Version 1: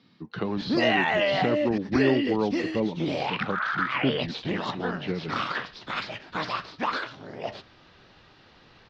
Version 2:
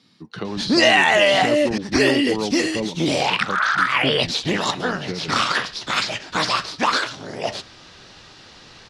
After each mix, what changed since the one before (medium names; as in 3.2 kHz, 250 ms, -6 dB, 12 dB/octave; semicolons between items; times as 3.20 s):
background +7.0 dB; master: remove distance through air 230 m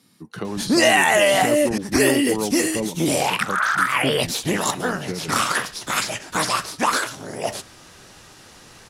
master: remove resonant low-pass 4.3 kHz, resonance Q 1.8